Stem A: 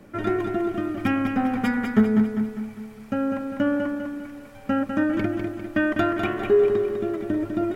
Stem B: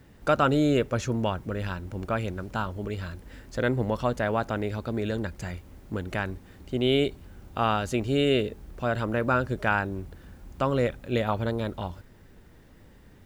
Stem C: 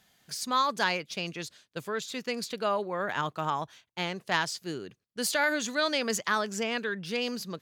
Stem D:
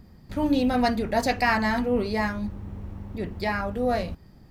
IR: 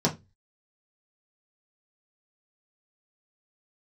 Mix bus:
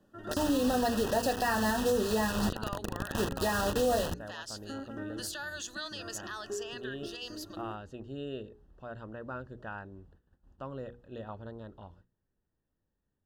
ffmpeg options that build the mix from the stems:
-filter_complex "[0:a]volume=0.141[s0];[1:a]aemphasis=mode=reproduction:type=75fm,volume=0.158[s1];[2:a]highpass=290,tiltshelf=f=970:g=-6,volume=0.299,asplit=2[s2][s3];[3:a]adynamicequalizer=threshold=0.0141:dfrequency=460:dqfactor=1.5:tfrequency=460:tqfactor=1.5:attack=5:release=100:ratio=0.375:range=3:mode=boostabove:tftype=bell,acrusher=bits=4:mix=0:aa=0.000001,volume=1.12[s4];[s3]apad=whole_len=342156[s5];[s0][s5]sidechaincompress=threshold=0.00631:ratio=8:attack=16:release=122[s6];[s1][s2]amix=inputs=2:normalize=0,agate=range=0.178:threshold=0.00112:ratio=16:detection=peak,alimiter=level_in=1.58:limit=0.0631:level=0:latency=1:release=129,volume=0.631,volume=1[s7];[s6][s4][s7]amix=inputs=3:normalize=0,asuperstop=centerf=2200:order=20:qfactor=3.7,bandreject=f=60:t=h:w=6,bandreject=f=120:t=h:w=6,bandreject=f=180:t=h:w=6,bandreject=f=240:t=h:w=6,bandreject=f=300:t=h:w=6,bandreject=f=360:t=h:w=6,bandreject=f=420:t=h:w=6,bandreject=f=480:t=h:w=6,alimiter=limit=0.106:level=0:latency=1:release=321"

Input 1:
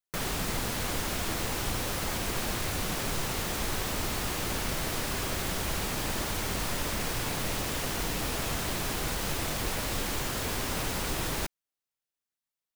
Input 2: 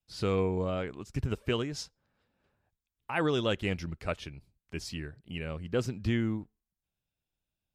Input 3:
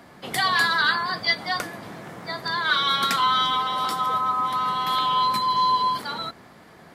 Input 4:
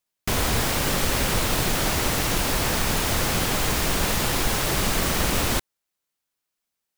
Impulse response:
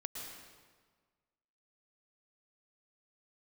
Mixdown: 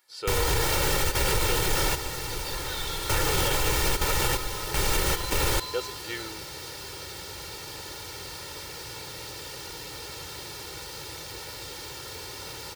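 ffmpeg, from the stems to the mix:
-filter_complex "[0:a]highpass=81,equalizer=f=4600:t=o:w=0.81:g=7.5,adelay=1700,volume=0.316[s0];[1:a]highpass=520,volume=1,asplit=2[s1][s2];[2:a]aderivative,volume=0.376[s3];[3:a]volume=0.891[s4];[s2]apad=whole_len=307440[s5];[s4][s5]sidechaingate=range=0.251:threshold=0.00224:ratio=16:detection=peak[s6];[s0][s1][s3][s6]amix=inputs=4:normalize=0,aecho=1:1:2.2:0.77,alimiter=limit=0.188:level=0:latency=1:release=52"

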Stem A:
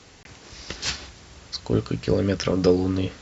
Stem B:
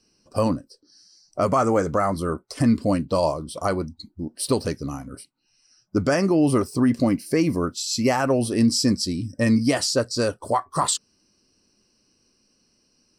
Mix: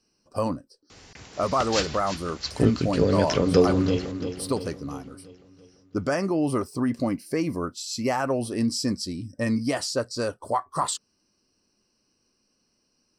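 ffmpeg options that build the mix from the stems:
-filter_complex "[0:a]adelay=900,volume=1,asplit=2[s0][s1];[s1]volume=0.299[s2];[1:a]equalizer=f=960:t=o:w=1.8:g=4,volume=0.473[s3];[s2]aecho=0:1:341|682|1023|1364|1705|2046|2387|2728:1|0.54|0.292|0.157|0.085|0.0459|0.0248|0.0134[s4];[s0][s3][s4]amix=inputs=3:normalize=0"

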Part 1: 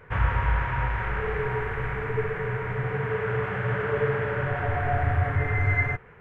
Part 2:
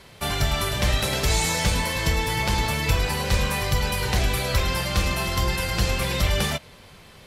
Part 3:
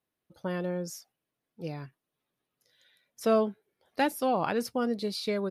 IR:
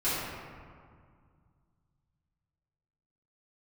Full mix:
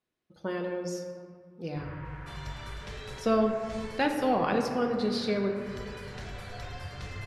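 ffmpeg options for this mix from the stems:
-filter_complex "[0:a]adelay=1650,volume=0.106,asplit=2[s0][s1];[s1]volume=0.2[s2];[1:a]adelay=2050,volume=0.106[s3];[2:a]volume=0.891,asplit=3[s4][s5][s6];[s5]volume=0.251[s7];[s6]apad=whole_len=410853[s8];[s3][s8]sidechaincompress=threshold=0.00398:ratio=8:attack=16:release=211[s9];[3:a]atrim=start_sample=2205[s10];[s2][s7]amix=inputs=2:normalize=0[s11];[s11][s10]afir=irnorm=-1:irlink=0[s12];[s0][s9][s4][s12]amix=inputs=4:normalize=0,lowpass=7000,equalizer=f=790:t=o:w=0.77:g=-2.5,bandreject=f=60:t=h:w=6,bandreject=f=120:t=h:w=6,bandreject=f=180:t=h:w=6"

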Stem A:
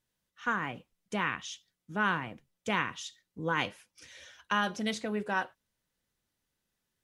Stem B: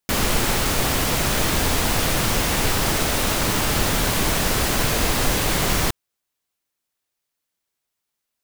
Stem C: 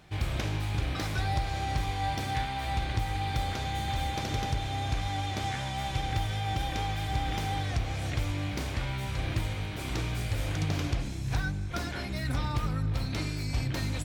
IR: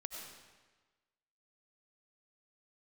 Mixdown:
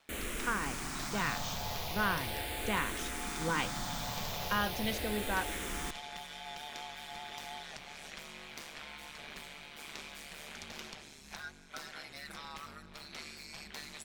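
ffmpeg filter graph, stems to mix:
-filter_complex "[0:a]volume=0.668[s0];[1:a]asplit=2[s1][s2];[s2]afreqshift=-0.38[s3];[s1][s3]amix=inputs=2:normalize=1,volume=0.158[s4];[2:a]highpass=f=1200:p=1,aeval=exprs='val(0)*sin(2*PI*74*n/s)':c=same,volume=0.708[s5];[s0][s4][s5]amix=inputs=3:normalize=0"

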